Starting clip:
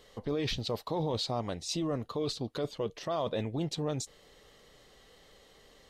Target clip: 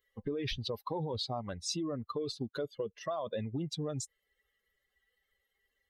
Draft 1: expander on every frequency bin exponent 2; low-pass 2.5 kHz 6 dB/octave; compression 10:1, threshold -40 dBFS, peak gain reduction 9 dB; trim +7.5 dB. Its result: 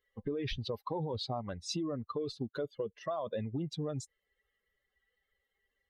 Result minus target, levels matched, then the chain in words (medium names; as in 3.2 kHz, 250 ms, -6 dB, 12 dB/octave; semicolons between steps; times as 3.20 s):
8 kHz band -5.0 dB
expander on every frequency bin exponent 2; low-pass 9.9 kHz 6 dB/octave; compression 10:1, threshold -40 dBFS, peak gain reduction 9.5 dB; trim +7.5 dB